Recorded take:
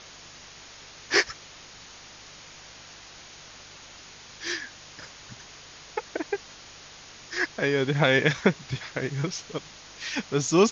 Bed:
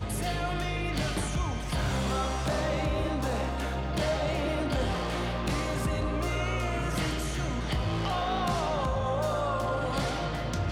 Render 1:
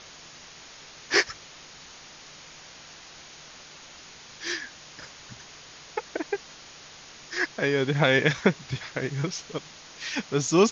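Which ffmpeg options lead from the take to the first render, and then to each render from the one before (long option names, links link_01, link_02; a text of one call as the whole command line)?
ffmpeg -i in.wav -af "bandreject=frequency=50:width_type=h:width=4,bandreject=frequency=100:width_type=h:width=4" out.wav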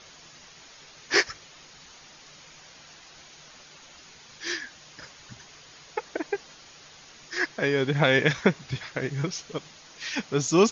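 ffmpeg -i in.wav -af "afftdn=noise_reduction=6:noise_floor=-48" out.wav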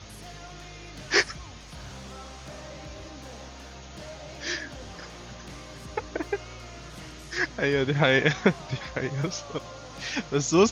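ffmpeg -i in.wav -i bed.wav -filter_complex "[1:a]volume=-13.5dB[link_01];[0:a][link_01]amix=inputs=2:normalize=0" out.wav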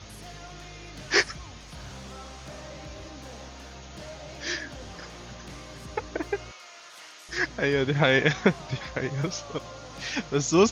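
ffmpeg -i in.wav -filter_complex "[0:a]asettb=1/sr,asplit=3[link_01][link_02][link_03];[link_01]atrim=end=6.514[link_04];[link_02]atrim=start=6.51:end=7.29,asetpts=PTS-STARTPTS,afade=type=in:duration=0.004:curve=qsin,afade=type=out:start_time=0.776:duration=0.004:curve=qsin,highpass=840[link_05];[link_03]atrim=start=7.286[link_06];[link_04][link_05]acrossfade=duration=0.004:curve1=hsin:curve2=qsin[link_07];[link_07][link_06]acrossfade=duration=0.004:curve1=qsin:curve2=hsin" out.wav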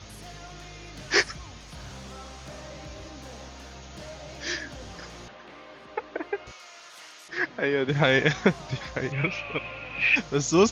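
ffmpeg -i in.wav -filter_complex "[0:a]asettb=1/sr,asplit=3[link_01][link_02][link_03];[link_01]atrim=end=5.284[link_04];[link_02]atrim=start=5.28:end=6.47,asetpts=PTS-STARTPTS,afade=type=in:duration=0.004:curve=qsin,afade=type=out:start_time=1.186:duration=0.004:curve=qsin,acrossover=split=270 3600:gain=0.1 1 0.0708[link_05][link_06][link_07];[link_05][link_06][link_07]amix=inputs=3:normalize=0[link_08];[link_03]atrim=start=6.466[link_09];[link_04][link_08]acrossfade=duration=0.004:curve1=hsin:curve2=qsin[link_10];[link_10][link_09]acrossfade=duration=0.004:curve1=qsin:curve2=hsin,asettb=1/sr,asplit=3[link_11][link_12][link_13];[link_11]atrim=end=7.284[link_14];[link_12]atrim=start=7.28:end=7.89,asetpts=PTS-STARTPTS,afade=type=in:duration=0.004:curve=qsin,afade=type=out:start_time=0.606:duration=0.004:curve=qsin,highpass=200,lowpass=3200[link_15];[link_13]atrim=start=7.886[link_16];[link_14][link_15]acrossfade=duration=0.004:curve1=hsin:curve2=qsin[link_17];[link_17][link_16]acrossfade=duration=0.004:curve1=qsin:curve2=hsin,asettb=1/sr,asplit=3[link_18][link_19][link_20];[link_18]atrim=end=9.124[link_21];[link_19]atrim=start=9.12:end=10.16,asetpts=PTS-STARTPTS,afade=type=in:duration=0.004:curve=qsin,afade=type=out:start_time=1.036:duration=0.004:curve=qsin,lowpass=frequency=2500:width_type=q:width=15[link_22];[link_20]atrim=start=10.156[link_23];[link_21][link_22]acrossfade=duration=0.004:curve1=hsin:curve2=qsin[link_24];[link_24][link_23]acrossfade=duration=0.004:curve1=qsin:curve2=hsin" out.wav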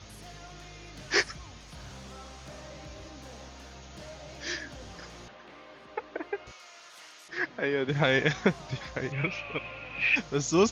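ffmpeg -i in.wav -af "volume=-3.5dB" out.wav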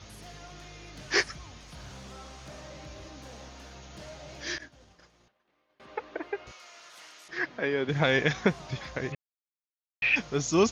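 ffmpeg -i in.wav -filter_complex "[0:a]asettb=1/sr,asplit=3[link_01][link_02][link_03];[link_01]atrim=end=4.584[link_04];[link_02]atrim=start=4.58:end=5.8,asetpts=PTS-STARTPTS,afade=type=in:duration=0.004:curve=qsin,afade=type=out:start_time=1.216:duration=0.004:curve=qsin,agate=range=-33dB:threshold=-36dB:ratio=3:release=100:detection=peak[link_05];[link_03]atrim=start=5.796[link_06];[link_04][link_05]acrossfade=duration=0.004:curve1=hsin:curve2=qsin[link_07];[link_07][link_06]acrossfade=duration=0.004:curve1=qsin:curve2=hsin,asplit=3[link_08][link_09][link_10];[link_08]atrim=end=9.15,asetpts=PTS-STARTPTS,afade=type=out:start_time=9.146:duration=0.004:curve=hsin[link_11];[link_09]atrim=start=9.15:end=10.02,asetpts=PTS-STARTPTS,volume=0[link_12];[link_10]atrim=start=10.02,asetpts=PTS-STARTPTS,afade=type=in:duration=0.004:curve=hsin[link_13];[link_11][link_12][link_13]concat=n=3:v=0:a=1" out.wav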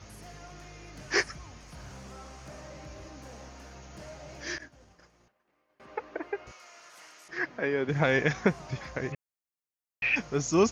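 ffmpeg -i in.wav -af "equalizer=frequency=3600:width=2.2:gain=-8.5" out.wav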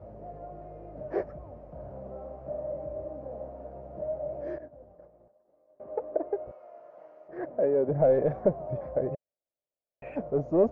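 ffmpeg -i in.wav -af "asoftclip=type=tanh:threshold=-23.5dB,lowpass=frequency=600:width_type=q:width=6.3" out.wav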